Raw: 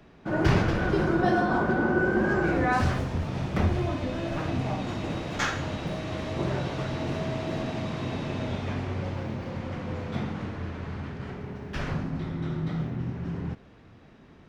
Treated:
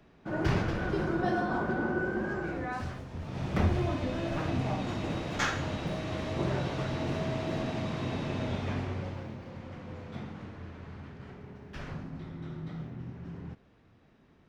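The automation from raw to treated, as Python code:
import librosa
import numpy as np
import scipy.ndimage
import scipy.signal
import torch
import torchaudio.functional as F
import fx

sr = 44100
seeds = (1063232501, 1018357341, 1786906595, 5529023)

y = fx.gain(x, sr, db=fx.line((1.84, -6.0), (3.05, -13.5), (3.51, -2.0), (8.79, -2.0), (9.41, -9.5)))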